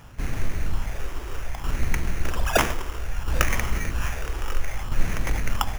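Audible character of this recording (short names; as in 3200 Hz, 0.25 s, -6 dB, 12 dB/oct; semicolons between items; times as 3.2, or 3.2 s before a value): phasing stages 6, 0.62 Hz, lowest notch 180–1200 Hz; tremolo saw down 0.61 Hz, depth 55%; aliases and images of a low sample rate 4200 Hz, jitter 0%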